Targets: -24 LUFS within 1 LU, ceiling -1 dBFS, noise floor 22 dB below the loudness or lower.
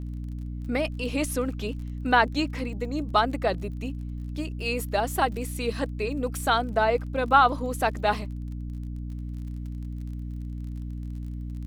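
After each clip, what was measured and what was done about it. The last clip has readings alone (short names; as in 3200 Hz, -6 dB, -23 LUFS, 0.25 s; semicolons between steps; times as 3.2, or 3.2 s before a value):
ticks 33/s; hum 60 Hz; harmonics up to 300 Hz; hum level -31 dBFS; loudness -28.0 LUFS; peak -6.0 dBFS; loudness target -24.0 LUFS
-> de-click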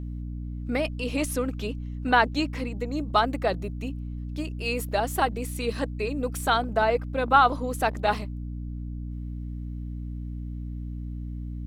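ticks 0.34/s; hum 60 Hz; harmonics up to 300 Hz; hum level -31 dBFS
-> notches 60/120/180/240/300 Hz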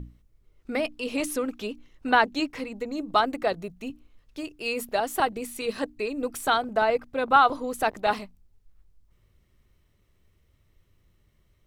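hum none; loudness -26.5 LUFS; peak -6.5 dBFS; loudness target -24.0 LUFS
-> gain +2.5 dB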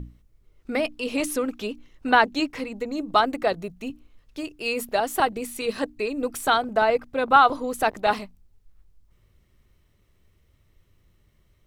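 loudness -24.0 LUFS; peak -4.0 dBFS; noise floor -63 dBFS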